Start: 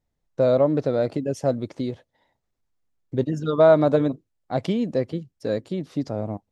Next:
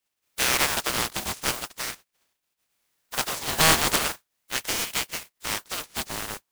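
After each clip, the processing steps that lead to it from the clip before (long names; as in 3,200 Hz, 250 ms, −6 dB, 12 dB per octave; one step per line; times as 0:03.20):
compressing power law on the bin magnitudes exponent 0.19
ring modulator whose carrier an LFO sweeps 1,600 Hz, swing 70%, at 0.41 Hz
level −1.5 dB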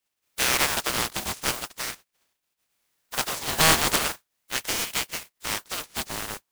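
no processing that can be heard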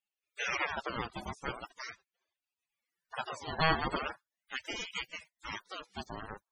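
spectral peaks only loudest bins 32
level −4.5 dB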